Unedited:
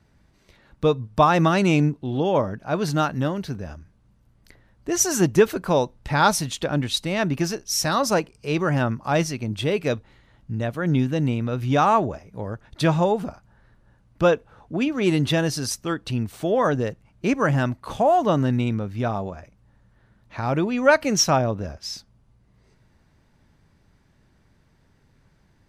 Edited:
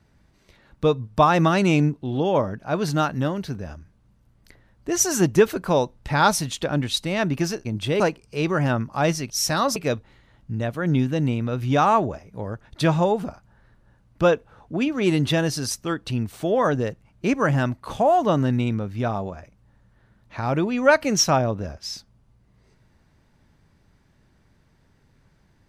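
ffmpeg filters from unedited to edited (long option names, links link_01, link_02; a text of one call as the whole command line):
ffmpeg -i in.wav -filter_complex "[0:a]asplit=5[link_01][link_02][link_03][link_04][link_05];[link_01]atrim=end=7.652[link_06];[link_02]atrim=start=9.408:end=9.762[link_07];[link_03]atrim=start=8.108:end=9.412[link_08];[link_04]atrim=start=7.648:end=8.112[link_09];[link_05]atrim=start=9.758[link_10];[link_06][link_07]acrossfade=duration=0.004:curve1=hsin:curve2=hsin[link_11];[link_11][link_08]acrossfade=duration=0.004:curve1=hsin:curve2=hsin[link_12];[link_12][link_09]acrossfade=duration=0.004:curve1=hsin:curve2=hsin[link_13];[link_13][link_10]acrossfade=duration=0.004:curve1=hsin:curve2=hsin" out.wav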